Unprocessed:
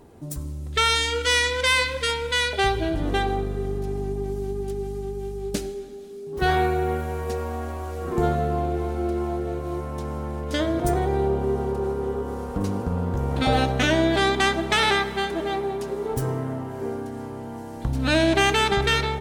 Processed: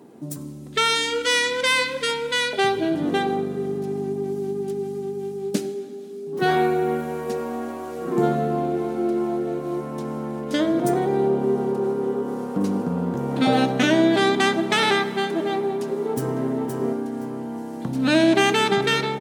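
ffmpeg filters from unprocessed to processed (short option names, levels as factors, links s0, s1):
-filter_complex "[0:a]asplit=2[s0][s1];[s1]afade=t=in:st=15.84:d=0.01,afade=t=out:st=16.4:d=0.01,aecho=0:1:520|1040|1560:0.562341|0.112468|0.0224937[s2];[s0][s2]amix=inputs=2:normalize=0,highpass=f=150:w=0.5412,highpass=f=150:w=1.3066,equalizer=f=240:w=1:g=6.5"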